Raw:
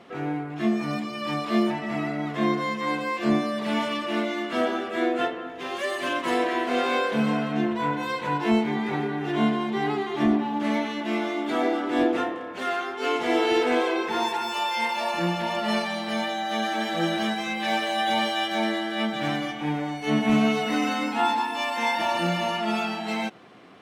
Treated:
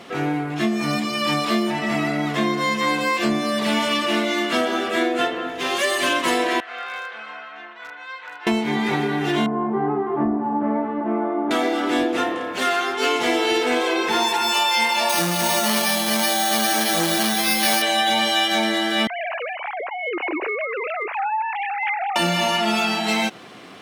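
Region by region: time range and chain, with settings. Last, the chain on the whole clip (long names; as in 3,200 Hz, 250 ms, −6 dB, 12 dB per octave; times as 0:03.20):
0:06.60–0:08.47: four-pole ladder band-pass 1,400 Hz, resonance 35% + gain into a clipping stage and back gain 30.5 dB + notch filter 1,000 Hz, Q 5.6
0:09.46–0:11.51: low-pass filter 1,200 Hz 24 dB per octave + double-tracking delay 16 ms −13 dB
0:15.09–0:17.82: bad sample-rate conversion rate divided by 6×, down none, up hold + saturating transformer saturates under 690 Hz
0:19.07–0:22.16: three sine waves on the formant tracks + elliptic band-pass filter 280–2,400 Hz + downward compressor 3 to 1, threshold −33 dBFS
whole clip: downward compressor, threshold −25 dBFS; high-shelf EQ 3,100 Hz +10.5 dB; level +7 dB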